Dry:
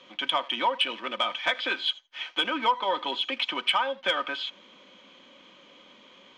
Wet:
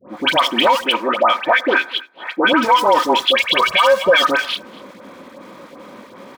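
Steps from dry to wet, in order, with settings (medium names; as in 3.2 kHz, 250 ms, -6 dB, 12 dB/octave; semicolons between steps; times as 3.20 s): local Wiener filter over 15 samples; in parallel at -7 dB: companded quantiser 4-bit; 0.82–2.53 s: on the sum: three-band isolator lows -21 dB, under 190 Hz, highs -16 dB, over 2.3 kHz; 3.26–4.14 s: comb 1.8 ms, depth 72%; on a send: delay 240 ms -23 dB; on the sum: volume shaper 159 bpm, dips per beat 1, -16 dB, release 88 ms; high-pass 68 Hz; treble shelf 8.5 kHz -6.5 dB; phase dispersion highs, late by 102 ms, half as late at 1.3 kHz; loudness maximiser +19.5 dB; trim -3.5 dB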